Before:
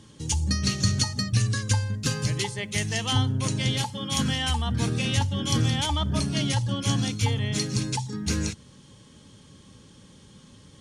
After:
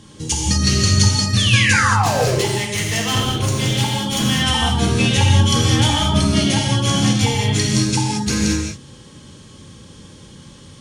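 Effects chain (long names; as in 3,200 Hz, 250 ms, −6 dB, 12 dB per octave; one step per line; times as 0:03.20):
0:01.37–0:02.35: sound drawn into the spectrogram fall 350–3,700 Hz −27 dBFS
0:01.88–0:04.25: hard clipping −24.5 dBFS, distortion −14 dB
reverb whose tail is shaped and stops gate 250 ms flat, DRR −2 dB
level +6 dB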